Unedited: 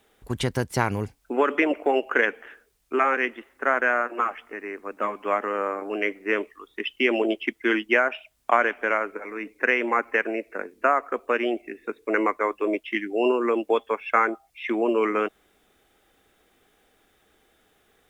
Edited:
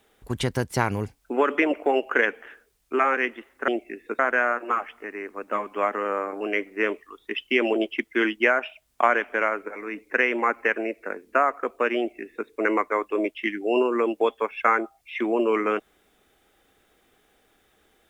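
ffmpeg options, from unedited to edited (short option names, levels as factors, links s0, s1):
-filter_complex "[0:a]asplit=3[s0][s1][s2];[s0]atrim=end=3.682[s3];[s1]atrim=start=11.458:end=11.972[s4];[s2]atrim=start=3.678[s5];[s3][s4]acrossfade=d=0.004:c1=hsin:c2=hsin[s6];[s6][s5]acrossfade=d=0.004:c1=hsin:c2=hsin"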